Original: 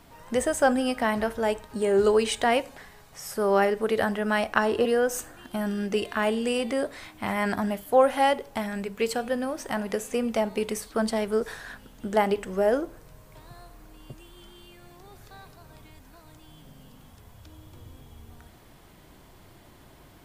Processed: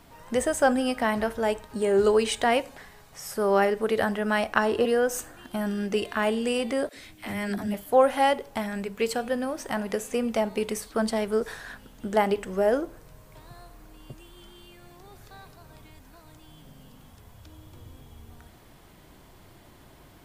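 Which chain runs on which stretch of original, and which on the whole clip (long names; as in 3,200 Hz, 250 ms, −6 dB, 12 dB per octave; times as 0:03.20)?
0:06.89–0:07.74: parametric band 990 Hz −12 dB 1.4 octaves + all-pass dispersion lows, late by 77 ms, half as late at 300 Hz
whole clip: no processing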